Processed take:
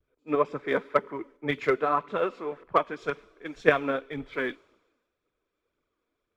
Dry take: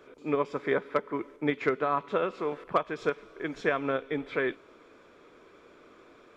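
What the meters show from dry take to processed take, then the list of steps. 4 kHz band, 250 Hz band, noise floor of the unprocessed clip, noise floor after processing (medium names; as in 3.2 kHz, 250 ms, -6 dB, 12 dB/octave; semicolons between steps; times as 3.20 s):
+2.5 dB, -0.5 dB, -57 dBFS, -82 dBFS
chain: phaser 1.9 Hz, delay 4.5 ms, feedback 40%; vibrato 0.62 Hz 32 cents; three bands expanded up and down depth 100%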